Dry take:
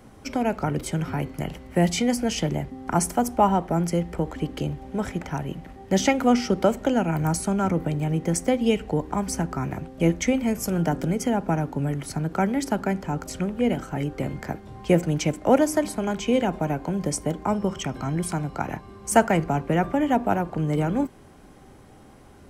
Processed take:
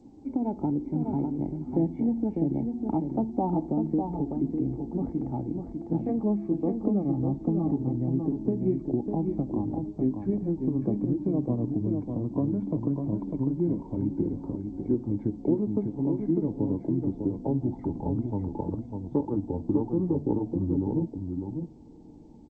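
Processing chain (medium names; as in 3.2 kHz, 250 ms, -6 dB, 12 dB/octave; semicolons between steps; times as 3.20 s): pitch bend over the whole clip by -9.5 st starting unshifted; level rider gain up to 4.5 dB; cascade formant filter u; compression 2.5:1, threshold -31 dBFS, peak gain reduction 9.5 dB; delay 600 ms -5.5 dB; trim +6 dB; G.722 64 kbps 16 kHz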